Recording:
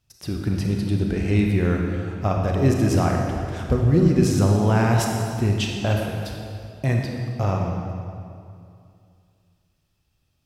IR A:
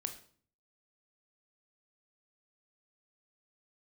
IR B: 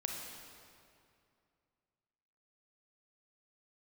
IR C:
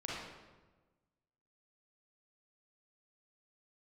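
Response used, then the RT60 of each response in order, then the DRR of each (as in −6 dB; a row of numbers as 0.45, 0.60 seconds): B; 0.50, 2.5, 1.3 seconds; 6.5, 0.5, −6.0 decibels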